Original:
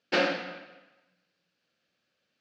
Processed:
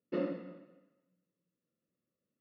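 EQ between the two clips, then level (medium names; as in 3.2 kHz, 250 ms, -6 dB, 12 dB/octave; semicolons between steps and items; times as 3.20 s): boxcar filter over 56 samples; distance through air 62 m; bass shelf 65 Hz -9.5 dB; 0.0 dB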